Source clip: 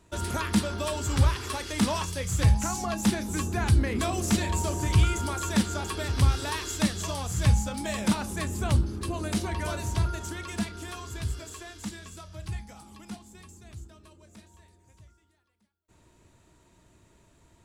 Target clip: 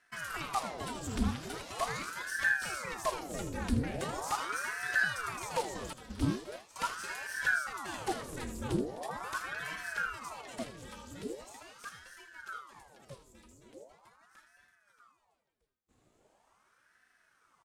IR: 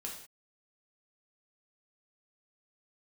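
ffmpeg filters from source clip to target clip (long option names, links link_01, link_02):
-filter_complex "[0:a]asettb=1/sr,asplit=3[link_01][link_02][link_03];[link_01]atrim=end=5.934[link_04];[link_02]atrim=start=5.93:end=6.76,asetpts=PTS-STARTPTS,afade=type=in:duration=0.004:curve=qsin,afade=type=out:start_time=0.826:duration=0.004:curve=qsin,agate=range=-33dB:threshold=-22dB:ratio=3:detection=peak[link_05];[link_03]atrim=start=6.756[link_06];[link_04][link_05]acrossfade=duration=0.004:curve1=hsin:curve2=qsin[link_07];[link_07][link_06]acrossfade=duration=0.004:curve1=qsin:curve2=hsin,aecho=1:1:79|257:0.282|0.158,aeval=exprs='val(0)*sin(2*PI*900*n/s+900*0.85/0.41*sin(2*PI*0.41*n/s))':channel_layout=same,volume=-7dB"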